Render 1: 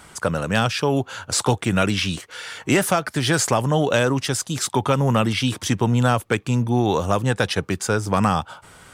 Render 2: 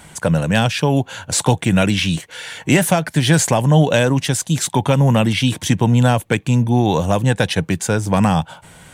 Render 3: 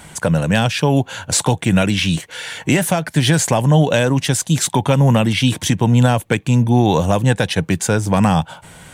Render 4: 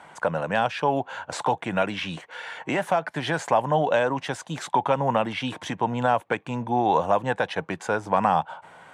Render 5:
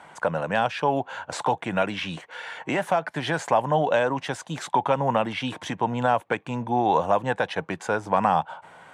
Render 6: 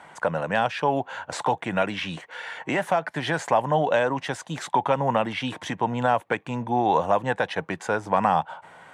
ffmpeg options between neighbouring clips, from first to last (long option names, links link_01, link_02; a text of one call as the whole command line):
ffmpeg -i in.wav -af "equalizer=frequency=160:width_type=o:width=0.33:gain=7,equalizer=frequency=400:width_type=o:width=0.33:gain=-5,equalizer=frequency=1250:width_type=o:width=0.33:gain=-11,equalizer=frequency=5000:width_type=o:width=0.33:gain=-6,volume=4.5dB" out.wav
ffmpeg -i in.wav -af "alimiter=limit=-6.5dB:level=0:latency=1:release=431,volume=2.5dB" out.wav
ffmpeg -i in.wav -af "bandpass=frequency=930:width_type=q:width=1.3:csg=0" out.wav
ffmpeg -i in.wav -af anull out.wav
ffmpeg -i in.wav -af "equalizer=frequency=1900:width=7.1:gain=3.5" out.wav